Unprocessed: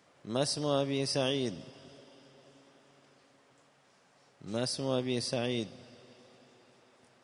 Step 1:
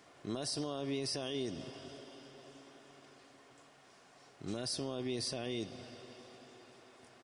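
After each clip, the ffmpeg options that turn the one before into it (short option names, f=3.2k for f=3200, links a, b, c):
-af "aecho=1:1:2.8:0.34,acompressor=threshold=-36dB:ratio=2.5,alimiter=level_in=8dB:limit=-24dB:level=0:latency=1:release=17,volume=-8dB,volume=3.5dB"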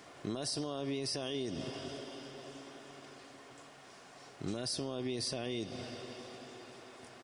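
-af "acompressor=threshold=-40dB:ratio=6,volume=6.5dB"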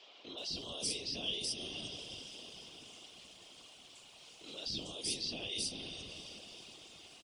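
-filter_complex "[0:a]highshelf=f=2.3k:t=q:w=3:g=9.5,acrossover=split=330|4800[a][b][c];[a]adelay=260[d];[c]adelay=380[e];[d][b][e]amix=inputs=3:normalize=0,afftfilt=real='hypot(re,im)*cos(2*PI*random(0))':imag='hypot(re,im)*sin(2*PI*random(1))':win_size=512:overlap=0.75,volume=-1dB"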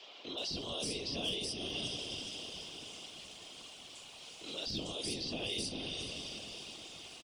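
-filter_complex "[0:a]acrossover=split=230|1600|2100[a][b][c][d];[d]alimiter=level_in=11.5dB:limit=-24dB:level=0:latency=1:release=345,volume=-11.5dB[e];[a][b][c][e]amix=inputs=4:normalize=0,asoftclip=type=hard:threshold=-34dB,aecho=1:1:422:0.282,volume=5dB"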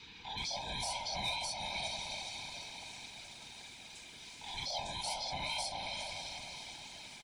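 -af "afftfilt=real='real(if(lt(b,1008),b+24*(1-2*mod(floor(b/24),2)),b),0)':imag='imag(if(lt(b,1008),b+24*(1-2*mod(floor(b/24),2)),b),0)':win_size=2048:overlap=0.75"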